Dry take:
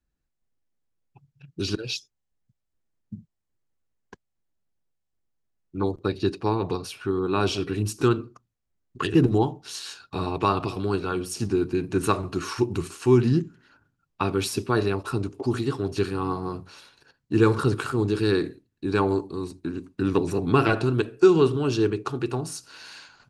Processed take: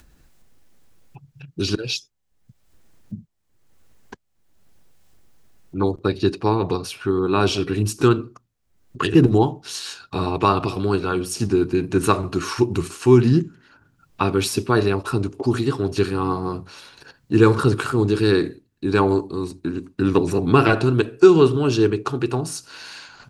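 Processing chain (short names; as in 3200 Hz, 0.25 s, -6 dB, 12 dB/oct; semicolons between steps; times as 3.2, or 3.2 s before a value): upward compressor, threshold -40 dBFS; gain +5 dB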